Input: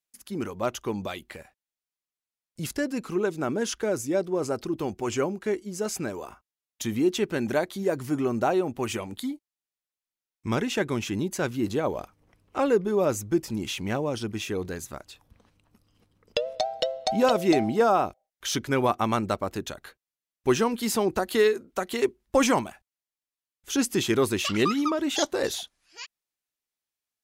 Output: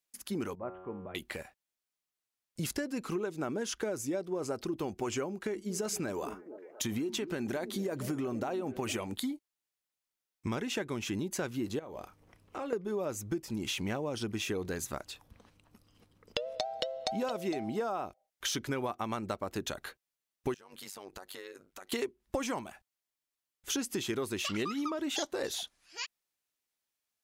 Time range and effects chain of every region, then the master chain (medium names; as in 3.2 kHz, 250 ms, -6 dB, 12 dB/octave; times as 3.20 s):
0.55–1.15 s: Gaussian low-pass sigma 5.3 samples + feedback comb 92 Hz, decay 1.5 s, mix 80%
5.31–8.95 s: compression, threshold -25 dBFS + repeats whose band climbs or falls 232 ms, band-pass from 260 Hz, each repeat 0.7 oct, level -11.5 dB
11.79–12.73 s: compression 4:1, threshold -40 dBFS + doubling 31 ms -11.5 dB
20.54–21.92 s: peaking EQ 200 Hz -13 dB 2.4 oct + compression 10:1, threshold -41 dBFS + AM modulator 98 Hz, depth 80%
whole clip: bass shelf 170 Hz -3 dB; compression 10:1, threshold -33 dBFS; trim +2 dB